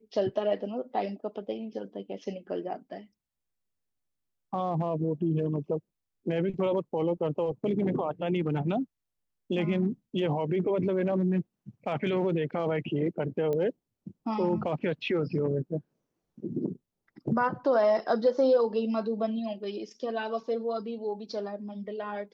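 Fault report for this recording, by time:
0:13.53: click −21 dBFS

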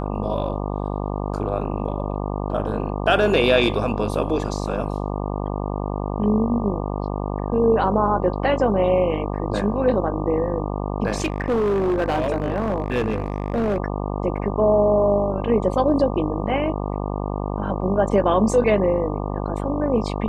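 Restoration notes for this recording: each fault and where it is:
mains buzz 50 Hz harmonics 24 −26 dBFS
0:11.16–0:13.80: clipping −17 dBFS

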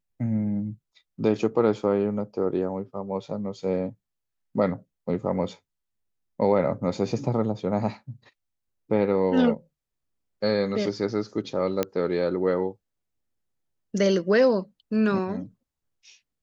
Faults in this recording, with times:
0:11.83: click −10 dBFS

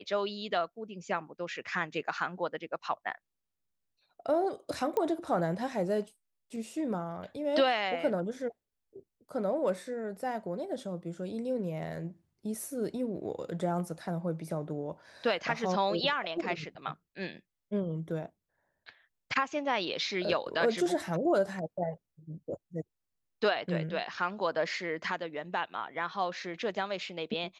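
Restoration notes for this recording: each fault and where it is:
0:04.97: click −19 dBFS

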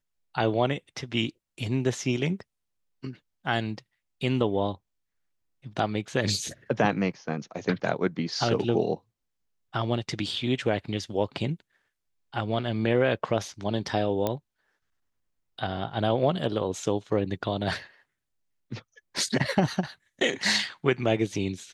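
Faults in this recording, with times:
0:14.27: click −13 dBFS

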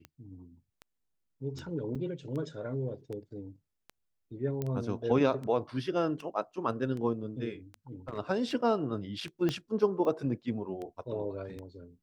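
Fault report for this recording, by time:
scratch tick 78 rpm −29 dBFS
0:01.95: drop-out 4.4 ms
0:04.62: click −21 dBFS
0:08.08–0:08.19: clipping −31.5 dBFS
0:09.49: click −18 dBFS

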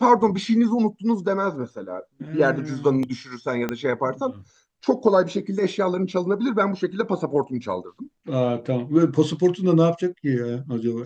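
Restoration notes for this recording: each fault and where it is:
0:03.69: click −12 dBFS

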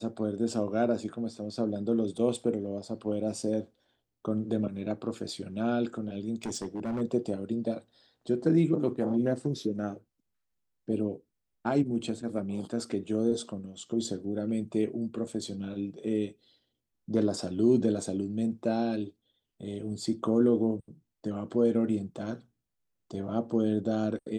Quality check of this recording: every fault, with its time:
0:06.44–0:07.02: clipping −29.5 dBFS

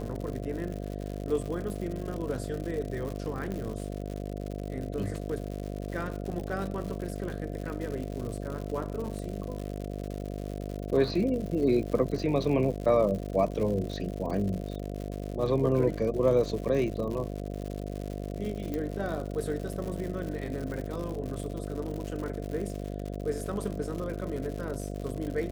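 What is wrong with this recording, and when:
mains buzz 50 Hz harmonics 14 −36 dBFS
surface crackle 140 per second −35 dBFS
0:03.52: click −24 dBFS
0:18.74: click

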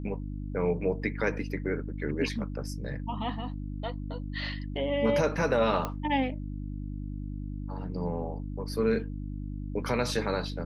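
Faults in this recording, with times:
mains hum 50 Hz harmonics 6 −36 dBFS
0:05.85: click −17 dBFS

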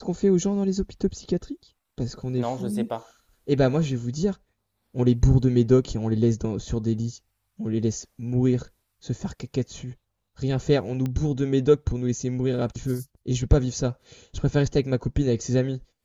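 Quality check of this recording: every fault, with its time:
0:11.06: click −17 dBFS

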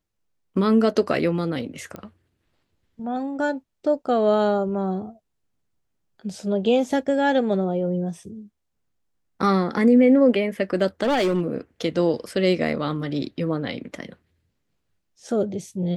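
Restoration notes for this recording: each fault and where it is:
0:01.96: click −21 dBFS
0:11.03–0:11.41: clipping −17 dBFS

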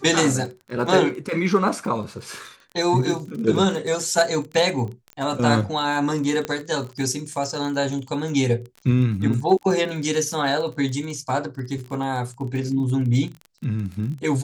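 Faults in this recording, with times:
surface crackle 30 per second −30 dBFS
0:06.45: click −12 dBFS

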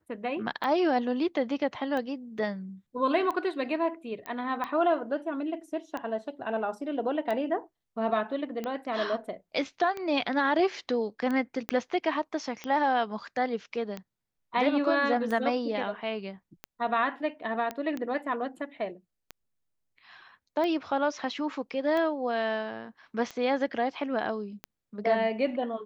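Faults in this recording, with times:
scratch tick 45 rpm −21 dBFS
0:02.38: drop-out 3.6 ms
0:04.26: click −22 dBFS
0:11.69: click −15 dBFS
0:17.71: click −19 dBFS

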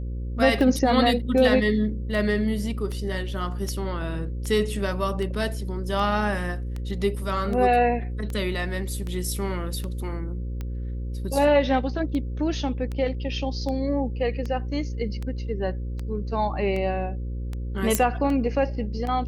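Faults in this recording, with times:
mains buzz 60 Hz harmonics 9 −30 dBFS
scratch tick 78 rpm
0:17.95: click −5 dBFS

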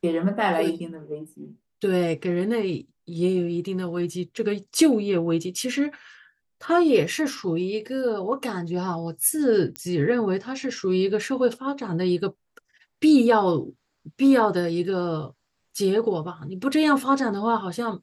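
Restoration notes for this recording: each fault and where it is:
0:09.76: click −16 dBFS

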